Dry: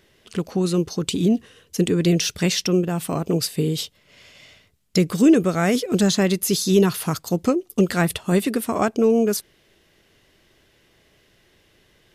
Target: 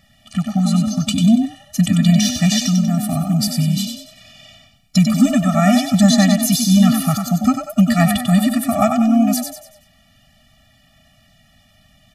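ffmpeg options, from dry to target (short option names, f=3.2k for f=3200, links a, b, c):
-filter_complex "[0:a]asplit=6[a][b][c][d][e][f];[b]adelay=95,afreqshift=37,volume=-5.5dB[g];[c]adelay=190,afreqshift=74,volume=-13.2dB[h];[d]adelay=285,afreqshift=111,volume=-21dB[i];[e]adelay=380,afreqshift=148,volume=-28.7dB[j];[f]adelay=475,afreqshift=185,volume=-36.5dB[k];[a][g][h][i][j][k]amix=inputs=6:normalize=0,asettb=1/sr,asplit=3[l][m][n];[l]atrim=end=2.614[o];[m]atrim=start=2.61:end=3.48,asetpts=PTS-STARTPTS,afade=t=in:d=0.004:c=qsin,afade=t=out:st=0.866:d=0.004:c=qsin,acrossover=split=400|3000[p][q][r];[q]acompressor=threshold=-40dB:ratio=1.5[s];[p][s][r]amix=inputs=3:normalize=0[t];[n]atrim=start=3.476[u];[o][t]acrossfade=d=0.004:c1=hsin:c2=qsin[v];[v][u]acrossfade=d=0.004:c1=qsin:c2=hsin,afftfilt=real='re*eq(mod(floor(b*sr/1024/280),2),0)':imag='im*eq(mod(floor(b*sr/1024/280),2),0)':win_size=1024:overlap=0.75,volume=7dB"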